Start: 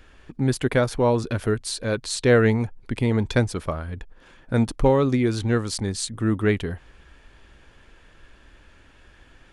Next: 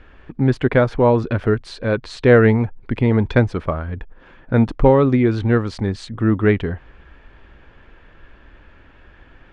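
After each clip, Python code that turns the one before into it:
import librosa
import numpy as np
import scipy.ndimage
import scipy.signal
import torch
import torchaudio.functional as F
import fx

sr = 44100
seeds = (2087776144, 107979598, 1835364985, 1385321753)

y = scipy.signal.sosfilt(scipy.signal.butter(2, 2400.0, 'lowpass', fs=sr, output='sos'), x)
y = y * 10.0 ** (5.5 / 20.0)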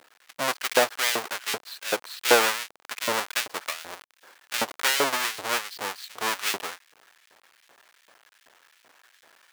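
y = fx.halfwave_hold(x, sr)
y = fx.filter_lfo_highpass(y, sr, shape='saw_up', hz=2.6, low_hz=540.0, high_hz=2700.0, q=0.9)
y = y * 10.0 ** (-6.5 / 20.0)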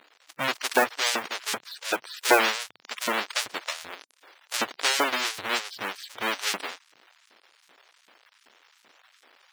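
y = fx.spec_quant(x, sr, step_db=30)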